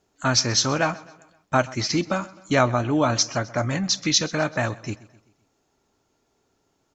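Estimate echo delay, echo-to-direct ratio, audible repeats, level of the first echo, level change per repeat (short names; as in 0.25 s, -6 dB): 0.129 s, -19.5 dB, 3, -20.5 dB, -6.0 dB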